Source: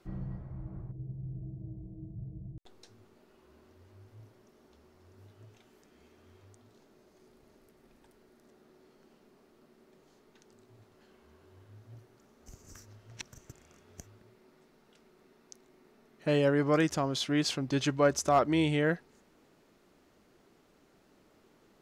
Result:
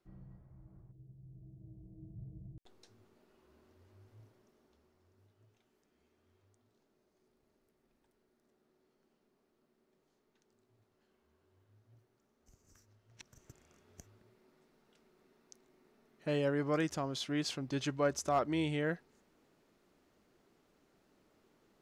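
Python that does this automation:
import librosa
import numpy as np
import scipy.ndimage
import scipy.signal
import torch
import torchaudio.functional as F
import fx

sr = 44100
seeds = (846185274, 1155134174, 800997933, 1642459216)

y = fx.gain(x, sr, db=fx.line((1.2, -15.5), (2.17, -6.0), (4.2, -6.0), (5.33, -14.0), (13.08, -14.0), (13.48, -6.5)))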